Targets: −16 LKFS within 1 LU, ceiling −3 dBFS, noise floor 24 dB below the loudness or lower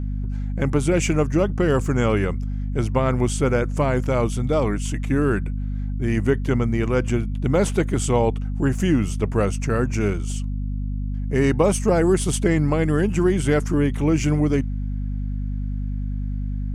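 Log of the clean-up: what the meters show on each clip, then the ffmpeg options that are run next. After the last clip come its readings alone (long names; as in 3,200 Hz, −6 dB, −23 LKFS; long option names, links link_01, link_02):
mains hum 50 Hz; hum harmonics up to 250 Hz; level of the hum −23 dBFS; integrated loudness −22.0 LKFS; sample peak −6.0 dBFS; target loudness −16.0 LKFS
→ -af "bandreject=frequency=50:width_type=h:width=4,bandreject=frequency=100:width_type=h:width=4,bandreject=frequency=150:width_type=h:width=4,bandreject=frequency=200:width_type=h:width=4,bandreject=frequency=250:width_type=h:width=4"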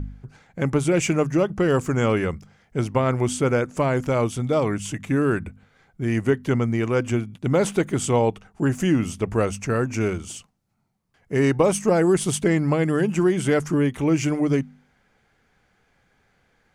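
mains hum none found; integrated loudness −22.5 LKFS; sample peak −7.5 dBFS; target loudness −16.0 LKFS
→ -af "volume=6.5dB,alimiter=limit=-3dB:level=0:latency=1"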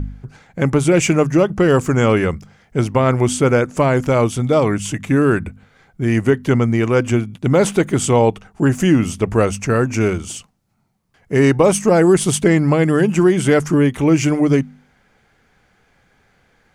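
integrated loudness −16.0 LKFS; sample peak −3.0 dBFS; background noise floor −59 dBFS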